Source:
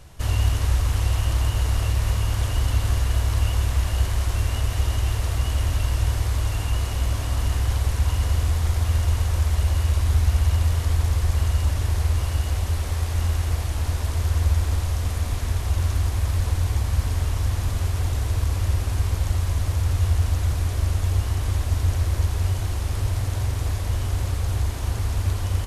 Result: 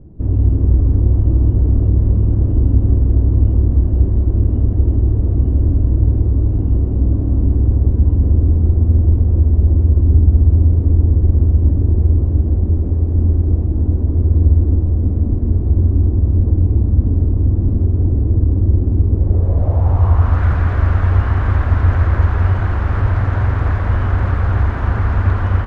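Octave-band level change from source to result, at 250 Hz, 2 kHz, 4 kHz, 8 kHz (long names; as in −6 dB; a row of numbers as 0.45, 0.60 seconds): +16.0 dB, can't be measured, below −10 dB, below −25 dB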